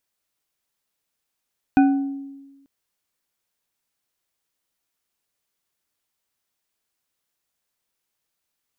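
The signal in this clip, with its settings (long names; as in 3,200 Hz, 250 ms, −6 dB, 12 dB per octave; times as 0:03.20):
struck glass bar, lowest mode 276 Hz, modes 4, decay 1.23 s, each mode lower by 7 dB, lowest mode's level −10 dB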